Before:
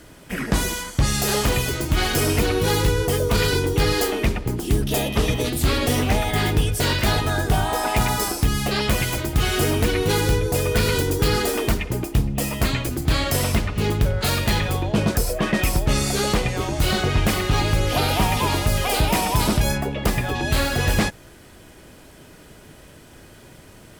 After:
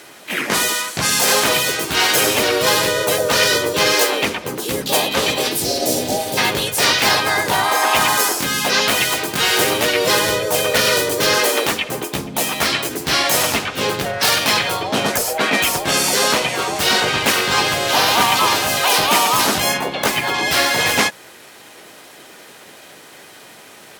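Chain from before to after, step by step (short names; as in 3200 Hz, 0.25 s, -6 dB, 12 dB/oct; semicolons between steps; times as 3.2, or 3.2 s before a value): weighting filter A; spectral repair 5.63–6.36, 680–3900 Hz before; high shelf 11000 Hz +5.5 dB; harmoniser +4 st 0 dB; gain +5 dB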